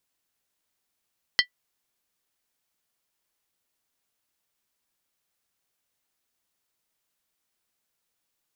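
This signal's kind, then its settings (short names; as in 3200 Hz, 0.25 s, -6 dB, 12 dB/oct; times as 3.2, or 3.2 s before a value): skin hit, lowest mode 1970 Hz, modes 5, decay 0.10 s, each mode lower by 1.5 dB, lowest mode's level -14 dB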